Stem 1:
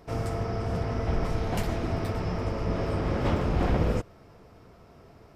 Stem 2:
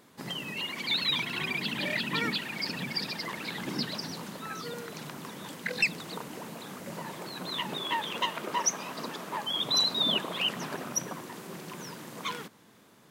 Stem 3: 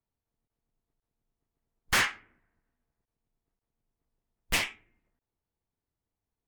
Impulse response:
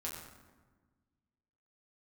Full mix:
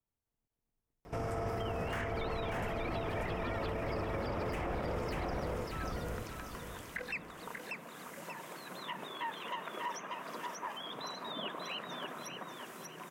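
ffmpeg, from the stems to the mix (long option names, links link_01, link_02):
-filter_complex "[0:a]adelay=1050,volume=2dB,asplit=2[link_01][link_02];[link_02]volume=-5dB[link_03];[1:a]lowshelf=frequency=430:gain=-11.5,bandreject=frequency=850:width=14,adelay=1300,volume=-2.5dB,asplit=2[link_04][link_05];[link_05]volume=-7dB[link_06];[2:a]volume=-3.5dB,asplit=2[link_07][link_08];[link_08]volume=-6.5dB[link_09];[link_03][link_06][link_09]amix=inputs=3:normalize=0,aecho=0:1:587|1174|1761|2348:1|0.27|0.0729|0.0197[link_10];[link_01][link_04][link_07][link_10]amix=inputs=4:normalize=0,equalizer=frequency=4200:width=2.6:gain=-7.5,acrossover=split=370|2100[link_11][link_12][link_13];[link_11]acompressor=threshold=-36dB:ratio=4[link_14];[link_12]acompressor=threshold=-32dB:ratio=4[link_15];[link_13]acompressor=threshold=-52dB:ratio=4[link_16];[link_14][link_15][link_16]amix=inputs=3:normalize=0,alimiter=level_in=4.5dB:limit=-24dB:level=0:latency=1:release=33,volume=-4.5dB"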